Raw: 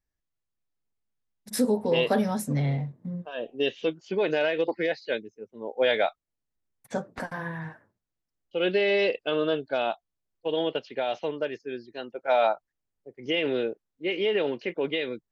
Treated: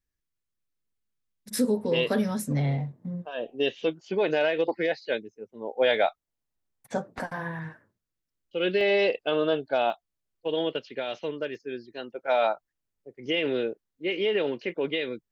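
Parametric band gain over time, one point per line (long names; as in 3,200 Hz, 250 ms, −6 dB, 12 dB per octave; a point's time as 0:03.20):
parametric band 770 Hz 0.61 octaves
−8.5 dB
from 0:02.52 +2.5 dB
from 0:07.59 −7 dB
from 0:08.81 +4.5 dB
from 0:09.90 −2.5 dB
from 0:10.71 −9 dB
from 0:11.55 −2.5 dB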